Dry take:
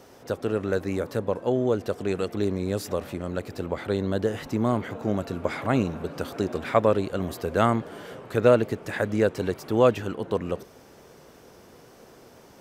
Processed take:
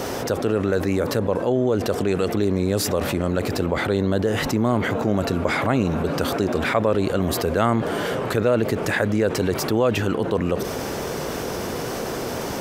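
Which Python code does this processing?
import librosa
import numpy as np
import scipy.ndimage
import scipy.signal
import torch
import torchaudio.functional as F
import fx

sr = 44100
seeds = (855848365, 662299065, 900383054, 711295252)

y = fx.env_flatten(x, sr, amount_pct=70)
y = y * 10.0 ** (-3.0 / 20.0)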